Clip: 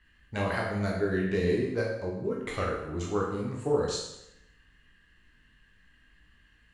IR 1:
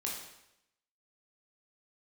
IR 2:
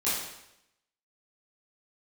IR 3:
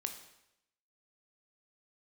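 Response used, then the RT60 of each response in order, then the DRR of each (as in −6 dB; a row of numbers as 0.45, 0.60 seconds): 1; 0.85, 0.85, 0.85 seconds; −3.0, −11.5, 5.5 decibels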